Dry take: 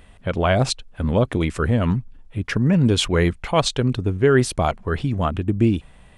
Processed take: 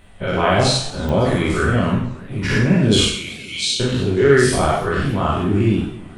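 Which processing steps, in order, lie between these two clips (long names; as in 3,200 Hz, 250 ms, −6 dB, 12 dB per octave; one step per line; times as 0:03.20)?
every bin's largest magnitude spread in time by 120 ms
0:03.05–0:03.80: Chebyshev high-pass filter 2,200 Hz, order 8
reverb whose tail is shaped and stops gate 200 ms falling, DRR −1.5 dB
digital clicks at 0:01.09, −11 dBFS
feedback echo with a swinging delay time 278 ms, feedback 56%, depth 191 cents, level −20 dB
level −5 dB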